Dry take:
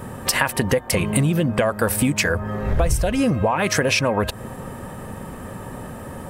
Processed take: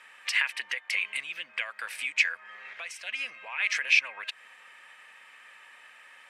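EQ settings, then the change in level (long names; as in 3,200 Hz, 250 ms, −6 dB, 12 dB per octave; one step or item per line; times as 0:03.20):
four-pole ladder band-pass 2,600 Hz, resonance 55%
+5.5 dB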